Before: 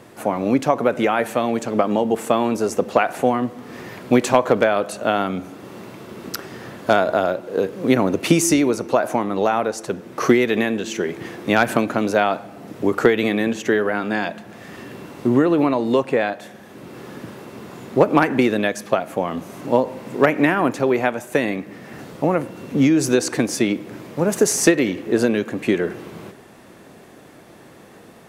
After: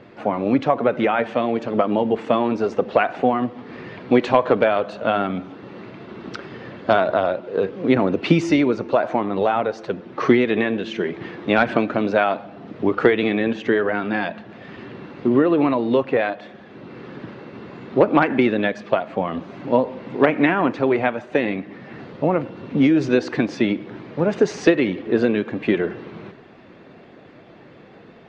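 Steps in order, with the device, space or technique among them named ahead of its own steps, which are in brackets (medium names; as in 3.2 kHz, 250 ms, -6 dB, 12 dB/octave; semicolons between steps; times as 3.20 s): clip after many re-uploads (low-pass 4 kHz 24 dB/octave; coarse spectral quantiser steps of 15 dB)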